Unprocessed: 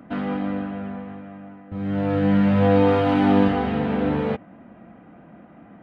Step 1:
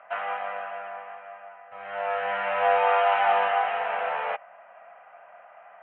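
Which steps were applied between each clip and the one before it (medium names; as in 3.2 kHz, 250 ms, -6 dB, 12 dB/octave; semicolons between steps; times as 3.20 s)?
elliptic band-pass 640–2800 Hz, stop band 40 dB; trim +4.5 dB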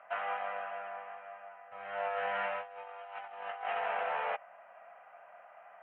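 compressor with a negative ratio -28 dBFS, ratio -0.5; trim -8.5 dB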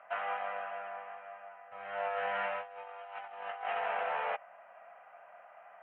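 no audible change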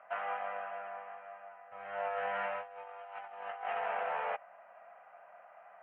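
distance through air 260 m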